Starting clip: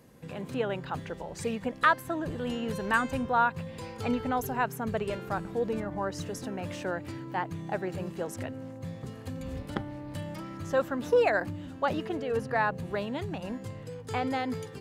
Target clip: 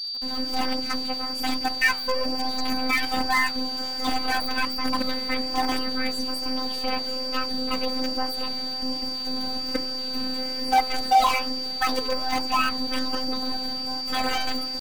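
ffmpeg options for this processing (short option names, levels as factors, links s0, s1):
-filter_complex "[0:a]highpass=130,lowshelf=f=190:g=10.5,bandreject=f=60:t=h:w=6,bandreject=f=120:t=h:w=6,bandreject=f=180:t=h:w=6,bandreject=f=240:t=h:w=6,bandreject=f=300:t=h:w=6,bandreject=f=360:t=h:w=6,bandreject=f=420:t=h:w=6,bandreject=f=480:t=h:w=6,bandreject=f=540:t=h:w=6,asplit=2[s0][s1];[s1]alimiter=limit=0.133:level=0:latency=1:release=233,volume=0.891[s2];[s0][s2]amix=inputs=2:normalize=0,acrusher=bits=4:dc=4:mix=0:aa=0.000001,aeval=exprs='val(0)+0.0224*sin(2*PI*3100*n/s)':c=same,afftfilt=real='hypot(re,im)*cos(PI*b)':imag='0':win_size=1024:overlap=0.75,asoftclip=type=tanh:threshold=0.188,asetrate=66075,aresample=44100,atempo=0.66742,flanger=delay=0.9:depth=9.7:regen=-88:speed=1.2:shape=triangular,volume=2.82"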